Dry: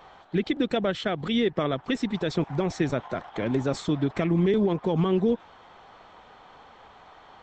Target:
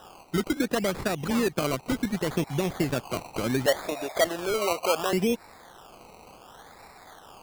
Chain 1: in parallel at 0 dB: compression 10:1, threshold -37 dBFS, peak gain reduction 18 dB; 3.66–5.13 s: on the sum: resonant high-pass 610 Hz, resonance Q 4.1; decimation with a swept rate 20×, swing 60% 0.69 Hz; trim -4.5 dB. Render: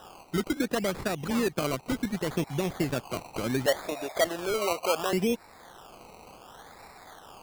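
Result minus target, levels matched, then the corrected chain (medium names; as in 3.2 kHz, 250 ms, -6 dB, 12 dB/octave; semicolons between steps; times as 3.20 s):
compression: peak gain reduction +9 dB
in parallel at 0 dB: compression 10:1, threshold -27 dBFS, peak gain reduction 9 dB; 3.66–5.13 s: on the sum: resonant high-pass 610 Hz, resonance Q 4.1; decimation with a swept rate 20×, swing 60% 0.69 Hz; trim -4.5 dB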